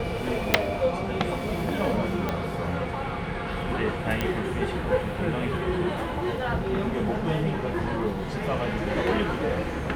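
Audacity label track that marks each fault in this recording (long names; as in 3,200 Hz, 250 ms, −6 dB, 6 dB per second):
0.540000	0.540000	click −2 dBFS
2.290000	2.290000	click −13 dBFS
4.210000	4.210000	click −11 dBFS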